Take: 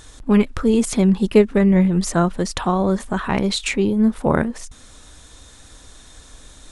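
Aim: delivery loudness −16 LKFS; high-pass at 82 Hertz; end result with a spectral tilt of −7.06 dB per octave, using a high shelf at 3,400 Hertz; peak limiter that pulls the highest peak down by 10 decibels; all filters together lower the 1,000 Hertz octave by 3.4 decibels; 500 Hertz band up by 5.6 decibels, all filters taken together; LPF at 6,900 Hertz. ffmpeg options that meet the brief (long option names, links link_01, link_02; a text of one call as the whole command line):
ffmpeg -i in.wav -af "highpass=82,lowpass=6900,equalizer=frequency=500:width_type=o:gain=9,equalizer=frequency=1000:width_type=o:gain=-8.5,highshelf=frequency=3400:gain=-4.5,volume=2.5dB,alimiter=limit=-5.5dB:level=0:latency=1" out.wav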